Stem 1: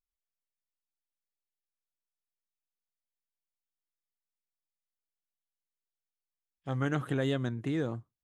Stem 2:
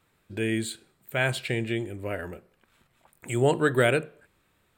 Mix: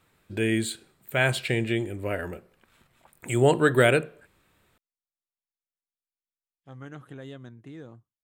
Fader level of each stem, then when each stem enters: -11.5, +2.5 dB; 0.00, 0.00 s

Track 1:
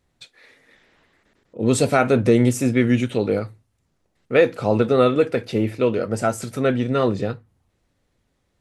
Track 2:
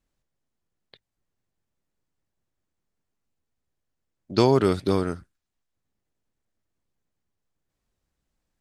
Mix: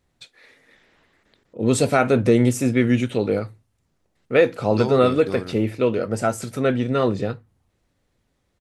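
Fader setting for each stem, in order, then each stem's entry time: -0.5, -8.0 dB; 0.00, 0.40 s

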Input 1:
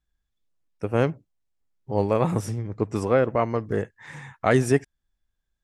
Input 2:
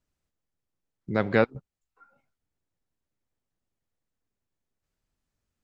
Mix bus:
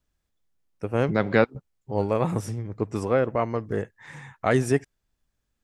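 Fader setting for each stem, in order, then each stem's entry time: -2.0, +2.0 dB; 0.00, 0.00 s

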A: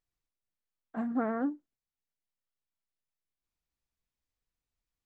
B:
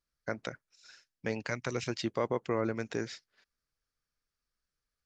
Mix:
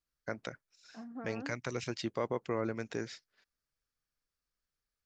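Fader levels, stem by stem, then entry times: -13.5, -3.0 dB; 0.00, 0.00 s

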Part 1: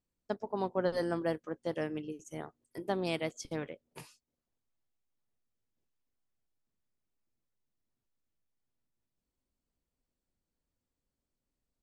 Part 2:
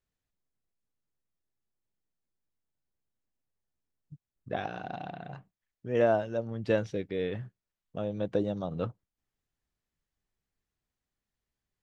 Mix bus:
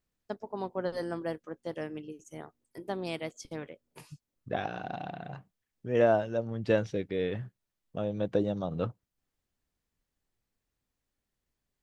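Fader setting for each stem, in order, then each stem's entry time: -2.0, +1.0 dB; 0.00, 0.00 s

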